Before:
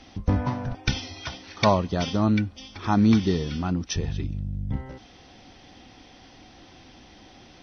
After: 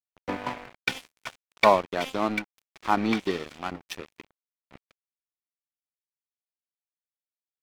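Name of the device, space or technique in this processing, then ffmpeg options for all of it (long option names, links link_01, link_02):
pocket radio on a weak battery: -af "highpass=380,lowpass=3400,aeval=exprs='sgn(val(0))*max(abs(val(0))-0.0158,0)':channel_layout=same,equalizer=frequency=2300:width_type=o:width=0.4:gain=4.5,volume=4dB"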